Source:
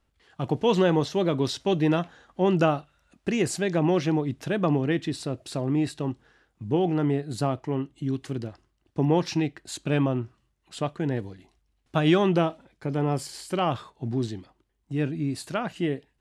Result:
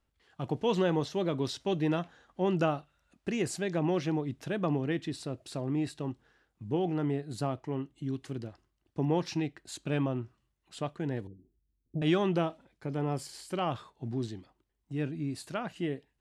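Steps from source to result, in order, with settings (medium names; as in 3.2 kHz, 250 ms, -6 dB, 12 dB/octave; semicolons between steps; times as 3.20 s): 11.27–12.02 s: inverse Chebyshev band-stop 1.4–5.7 kHz, stop band 70 dB; trim -6.5 dB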